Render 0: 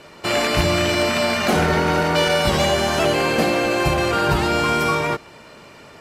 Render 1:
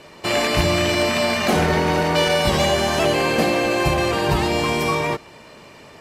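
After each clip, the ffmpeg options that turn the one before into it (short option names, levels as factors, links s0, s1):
-af "bandreject=f=1400:w=10"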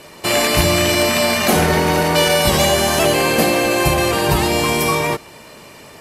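-af "equalizer=f=12000:w=0.73:g=13,volume=1.41"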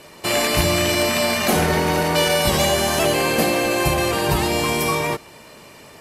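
-af "aeval=exprs='0.891*(cos(1*acos(clip(val(0)/0.891,-1,1)))-cos(1*PI/2))+0.0158*(cos(2*acos(clip(val(0)/0.891,-1,1)))-cos(2*PI/2))':c=same,volume=0.668"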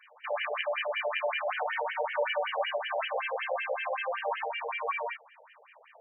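-af "afftfilt=real='re*between(b*sr/1024,600*pow(2300/600,0.5+0.5*sin(2*PI*5.3*pts/sr))/1.41,600*pow(2300/600,0.5+0.5*sin(2*PI*5.3*pts/sr))*1.41)':imag='im*between(b*sr/1024,600*pow(2300/600,0.5+0.5*sin(2*PI*5.3*pts/sr))/1.41,600*pow(2300/600,0.5+0.5*sin(2*PI*5.3*pts/sr))*1.41)':win_size=1024:overlap=0.75,volume=0.531"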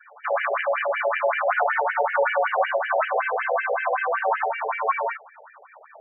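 -af "highpass=330,equalizer=f=500:t=q:w=4:g=-3,equalizer=f=730:t=q:w=4:g=4,equalizer=f=1400:t=q:w=4:g=8,lowpass=f=2100:w=0.5412,lowpass=f=2100:w=1.3066,afreqshift=-26,afftfilt=real='re*gte(hypot(re,im),0.00282)':imag='im*gte(hypot(re,im),0.00282)':win_size=1024:overlap=0.75,volume=2.51"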